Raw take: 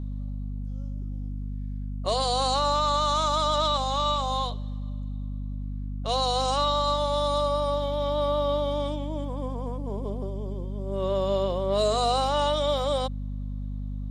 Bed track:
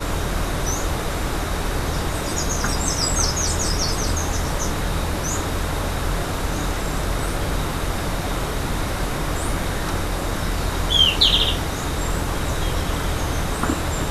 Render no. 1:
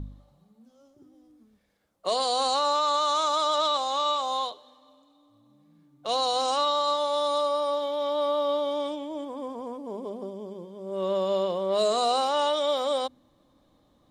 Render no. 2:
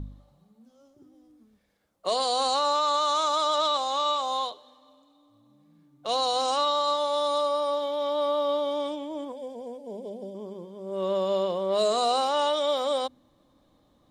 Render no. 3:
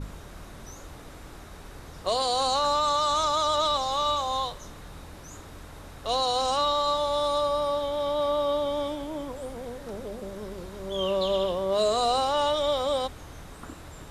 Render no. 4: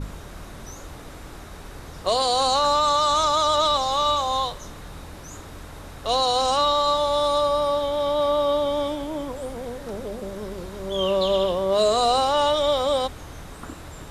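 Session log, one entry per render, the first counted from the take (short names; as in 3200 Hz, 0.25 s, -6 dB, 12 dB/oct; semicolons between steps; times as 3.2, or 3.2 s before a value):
de-hum 50 Hz, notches 5
9.32–10.35 fixed phaser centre 310 Hz, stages 6
add bed track -20.5 dB
gain +4.5 dB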